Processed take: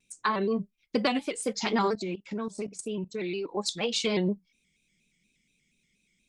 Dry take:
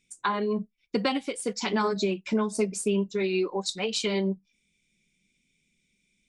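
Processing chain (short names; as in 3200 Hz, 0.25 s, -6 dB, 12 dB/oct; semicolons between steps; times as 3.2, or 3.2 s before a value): 1.95–3.57 level quantiser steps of 16 dB; shaped vibrato square 4.2 Hz, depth 100 cents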